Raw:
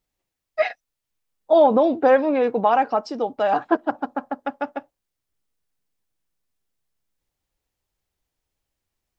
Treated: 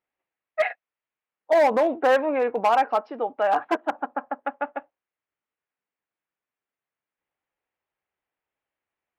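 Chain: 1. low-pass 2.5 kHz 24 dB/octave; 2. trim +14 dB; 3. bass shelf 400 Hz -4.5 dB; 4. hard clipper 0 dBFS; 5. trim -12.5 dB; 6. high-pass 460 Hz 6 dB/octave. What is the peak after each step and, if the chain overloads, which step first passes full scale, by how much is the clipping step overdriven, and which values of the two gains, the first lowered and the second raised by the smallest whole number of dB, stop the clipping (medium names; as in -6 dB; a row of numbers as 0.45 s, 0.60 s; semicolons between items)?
-6.0 dBFS, +8.0 dBFS, +7.0 dBFS, 0.0 dBFS, -12.5 dBFS, -9.5 dBFS; step 2, 7.0 dB; step 2 +7 dB, step 5 -5.5 dB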